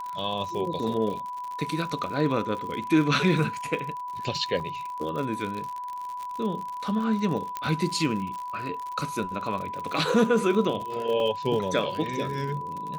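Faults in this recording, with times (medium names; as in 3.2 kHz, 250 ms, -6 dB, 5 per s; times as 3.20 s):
crackle 72 per s -32 dBFS
whine 990 Hz -32 dBFS
4.60 s: dropout 2.9 ms
7.57 s: pop -16 dBFS
11.20 s: dropout 2.1 ms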